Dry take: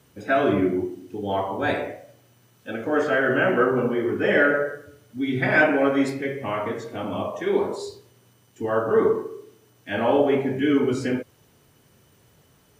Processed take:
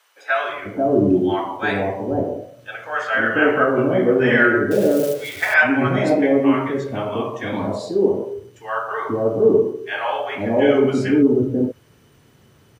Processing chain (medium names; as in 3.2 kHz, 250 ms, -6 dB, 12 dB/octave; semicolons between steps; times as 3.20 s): 4.71–5.54 s: zero-crossing glitches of -24.5 dBFS; treble shelf 5.7 kHz -9 dB; bands offset in time highs, lows 490 ms, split 720 Hz; trim +6 dB